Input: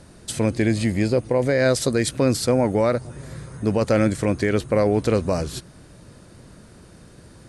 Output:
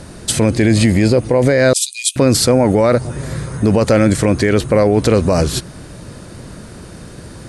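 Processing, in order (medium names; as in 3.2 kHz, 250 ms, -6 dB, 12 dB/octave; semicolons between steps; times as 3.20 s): 1.73–2.16 s: rippled Chebyshev high-pass 2.4 kHz, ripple 6 dB; loudness maximiser +14.5 dB; trim -2 dB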